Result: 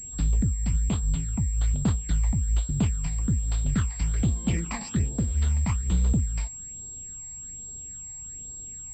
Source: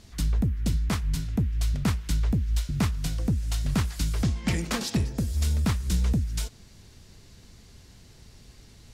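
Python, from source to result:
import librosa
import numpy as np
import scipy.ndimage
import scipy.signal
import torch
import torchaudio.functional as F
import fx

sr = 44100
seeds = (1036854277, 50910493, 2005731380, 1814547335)

y = fx.phaser_stages(x, sr, stages=8, low_hz=410.0, high_hz=2300.0, hz=1.2, feedback_pct=30)
y = fx.pwm(y, sr, carrier_hz=7600.0)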